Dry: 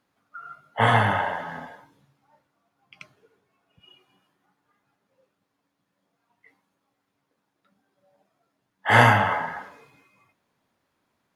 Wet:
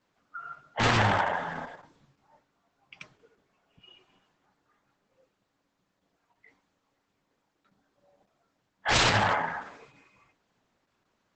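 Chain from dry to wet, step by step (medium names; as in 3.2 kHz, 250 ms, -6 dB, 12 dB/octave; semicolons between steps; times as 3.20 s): wavefolder -17 dBFS; Opus 10 kbps 48 kHz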